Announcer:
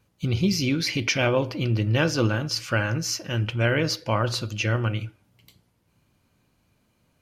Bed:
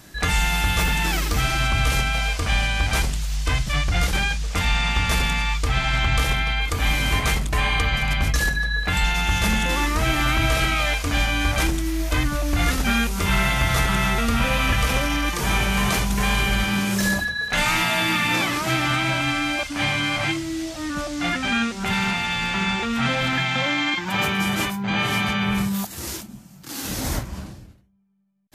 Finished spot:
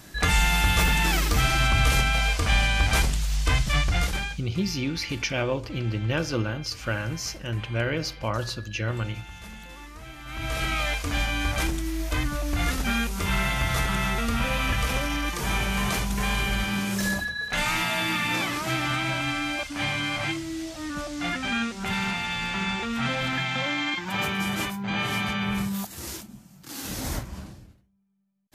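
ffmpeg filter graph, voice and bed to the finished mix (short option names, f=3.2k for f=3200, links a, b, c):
-filter_complex "[0:a]adelay=4150,volume=-4.5dB[a];[1:a]volume=16dB,afade=t=out:st=3.76:d=0.73:silence=0.0891251,afade=t=in:st=10.25:d=0.49:silence=0.149624[b];[a][b]amix=inputs=2:normalize=0"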